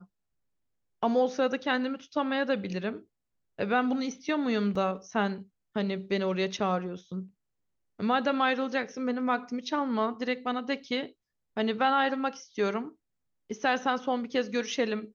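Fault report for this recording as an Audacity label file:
4.750000	4.750000	drop-out 4.6 ms

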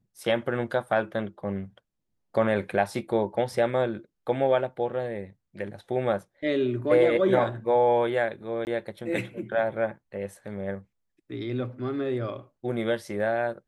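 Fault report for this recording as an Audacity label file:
8.650000	8.670000	drop-out 19 ms

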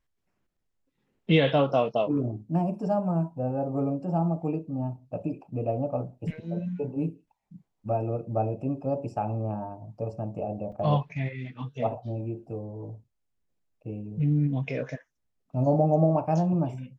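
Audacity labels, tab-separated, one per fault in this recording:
10.720000	10.720000	drop-out 4.2 ms

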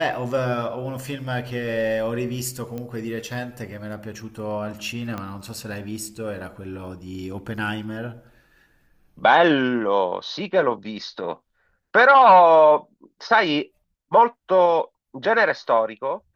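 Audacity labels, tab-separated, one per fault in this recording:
2.780000	2.780000	click −20 dBFS
5.180000	5.180000	click −17 dBFS

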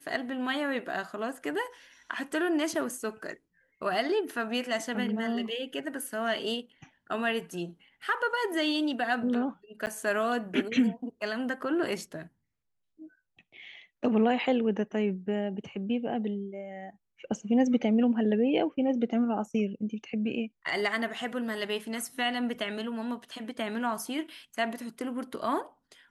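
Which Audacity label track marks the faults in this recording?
9.860000	9.870000	drop-out 9.3 ms

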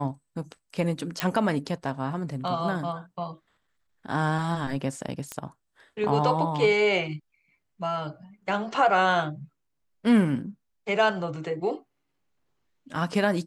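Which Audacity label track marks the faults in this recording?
1.200000	1.200000	click −9 dBFS
5.320000	5.320000	click −17 dBFS

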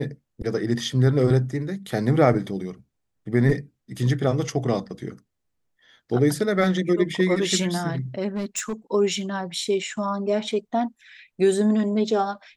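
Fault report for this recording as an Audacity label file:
8.280000	8.730000	clipping −23 dBFS

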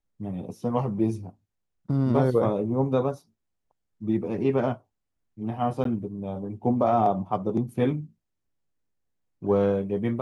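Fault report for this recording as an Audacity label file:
5.840000	5.850000	drop-out 13 ms

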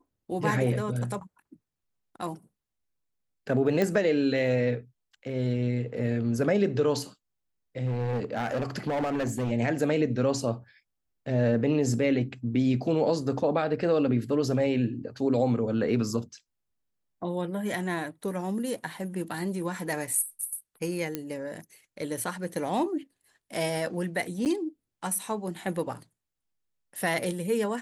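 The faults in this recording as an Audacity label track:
3.820000	3.820000	click −14 dBFS
7.850000	9.520000	clipping −25 dBFS
21.150000	21.150000	click −15 dBFS
24.450000	24.460000	drop-out 8.8 ms

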